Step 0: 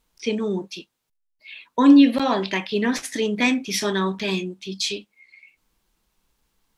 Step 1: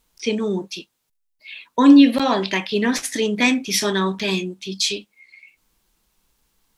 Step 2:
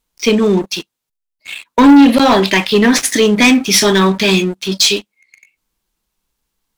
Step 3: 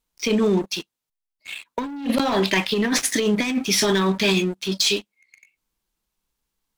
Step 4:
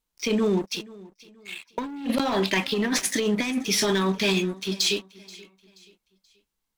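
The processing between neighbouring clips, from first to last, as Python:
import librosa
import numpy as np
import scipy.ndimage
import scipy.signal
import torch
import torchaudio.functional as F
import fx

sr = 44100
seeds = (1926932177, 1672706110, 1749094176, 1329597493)

y1 = fx.high_shelf(x, sr, hz=4600.0, db=5.0)
y1 = F.gain(torch.from_numpy(y1), 2.0).numpy()
y2 = fx.leveller(y1, sr, passes=3)
y3 = fx.over_compress(y2, sr, threshold_db=-11.0, ratio=-0.5)
y3 = F.gain(torch.from_numpy(y3), -8.5).numpy()
y4 = fx.echo_feedback(y3, sr, ms=480, feedback_pct=37, wet_db=-21.5)
y4 = F.gain(torch.from_numpy(y4), -3.5).numpy()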